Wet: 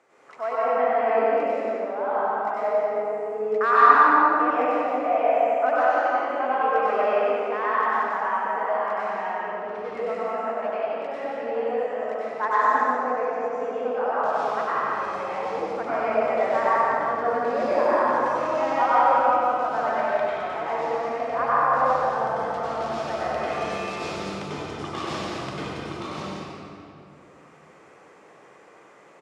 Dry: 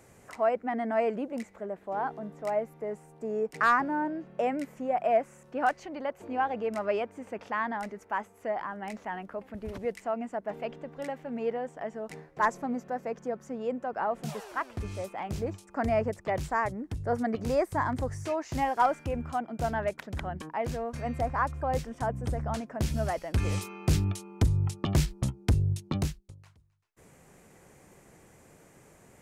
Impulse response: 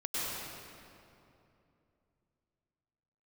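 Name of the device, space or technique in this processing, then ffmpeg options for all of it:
station announcement: -filter_complex "[0:a]highpass=410,lowpass=4.1k,equalizer=f=1.2k:t=o:w=0.45:g=5,bandreject=f=50:t=h:w=6,bandreject=f=100:t=h:w=6,aecho=1:1:93.29|174.9:0.562|0.562[a];[1:a]atrim=start_sample=2205[b];[a][b]afir=irnorm=-1:irlink=0"

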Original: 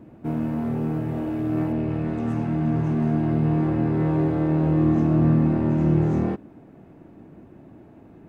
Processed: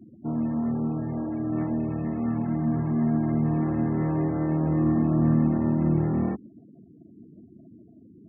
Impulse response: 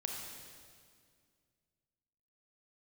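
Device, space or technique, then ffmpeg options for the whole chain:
bass cabinet: -af "highpass=f=62:p=1,bandreject=f=1.5k:w=7.8,afftfilt=real='re*gte(hypot(re,im),0.0112)':imag='im*gte(hypot(re,im),0.0112)':win_size=1024:overlap=0.75,highpass=f=63:w=0.5412,highpass=f=63:w=1.3066,equalizer=f=68:t=q:w=4:g=4,equalizer=f=220:t=q:w=4:g=6,equalizer=f=440:t=q:w=4:g=-3,lowpass=f=2.2k:w=0.5412,lowpass=f=2.2k:w=1.3066,equalizer=f=1.7k:t=o:w=1.2:g=5,volume=-4dB"

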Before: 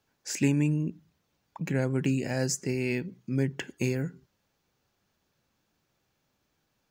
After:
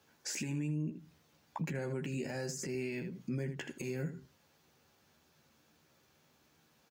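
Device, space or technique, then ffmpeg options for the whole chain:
podcast mastering chain: -af "highpass=61,highpass=f=82:p=1,aecho=1:1:13|79:0.562|0.211,deesser=0.65,acompressor=threshold=-35dB:ratio=3,alimiter=level_in=10.5dB:limit=-24dB:level=0:latency=1:release=274,volume=-10.5dB,volume=6dB" -ar 48000 -c:a libmp3lame -b:a 96k

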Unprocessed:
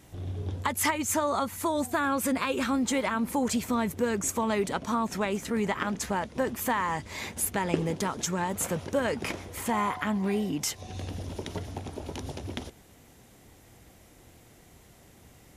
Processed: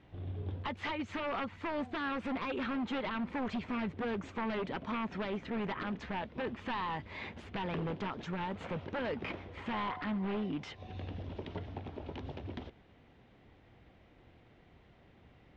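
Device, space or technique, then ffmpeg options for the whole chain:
synthesiser wavefolder: -af "aeval=exprs='0.0596*(abs(mod(val(0)/0.0596+3,4)-2)-1)':c=same,lowpass=f=3.4k:w=0.5412,lowpass=f=3.4k:w=1.3066,volume=-5.5dB"

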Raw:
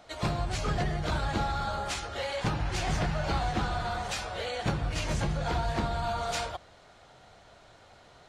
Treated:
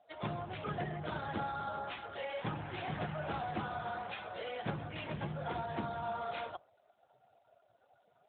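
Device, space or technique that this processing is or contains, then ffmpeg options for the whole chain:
mobile call with aggressive noise cancelling: -af "highpass=f=140:p=1,afftdn=nr=20:nf=-49,volume=-5.5dB" -ar 8000 -c:a libopencore_amrnb -b:a 12200

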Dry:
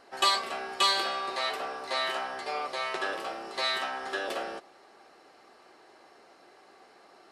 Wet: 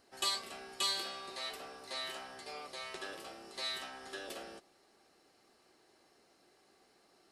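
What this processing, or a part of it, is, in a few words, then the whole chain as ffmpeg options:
smiley-face EQ: -af "lowshelf=f=200:g=6.5,equalizer=f=970:t=o:w=2.7:g=-8,highshelf=f=6.8k:g=8.5,volume=-7.5dB"

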